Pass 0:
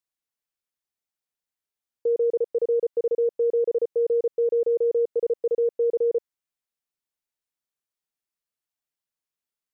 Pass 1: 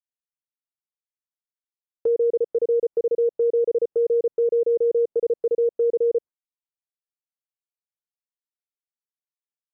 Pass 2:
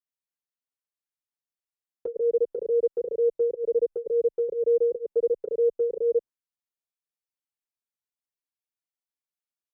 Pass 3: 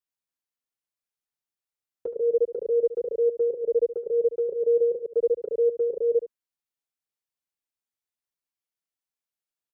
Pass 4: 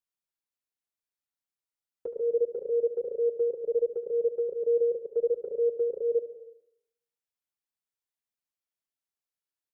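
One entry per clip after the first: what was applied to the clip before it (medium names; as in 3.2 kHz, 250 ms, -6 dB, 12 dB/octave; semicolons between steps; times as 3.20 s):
gate with hold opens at -35 dBFS; low-pass that closes with the level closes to 640 Hz, closed at -23 dBFS; trim +3 dB
endless flanger 6.2 ms +2.1 Hz
delay 72 ms -13 dB
plate-style reverb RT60 0.76 s, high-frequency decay 1×, pre-delay 115 ms, DRR 13 dB; trim -4 dB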